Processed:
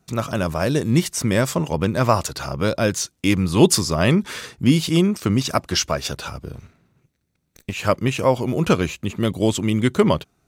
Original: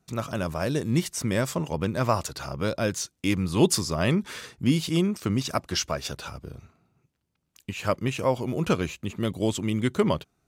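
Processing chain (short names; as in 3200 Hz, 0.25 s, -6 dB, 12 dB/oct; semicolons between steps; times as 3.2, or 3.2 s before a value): 6.55–7.73 minimum comb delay 0.49 ms; gain +6.5 dB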